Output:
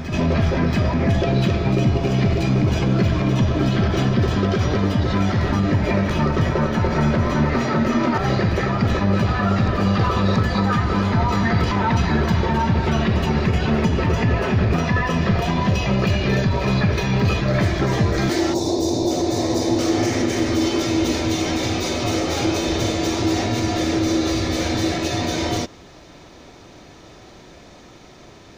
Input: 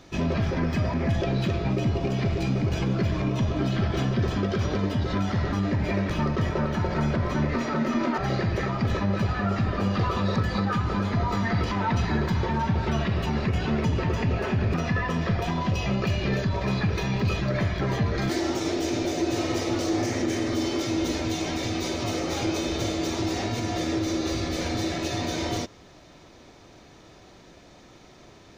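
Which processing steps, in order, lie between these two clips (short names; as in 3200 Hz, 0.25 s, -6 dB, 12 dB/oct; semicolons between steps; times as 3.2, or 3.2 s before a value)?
spectral gain 18.54–19.79, 1100–3500 Hz -17 dB; reverse echo 0.682 s -8.5 dB; gain +6 dB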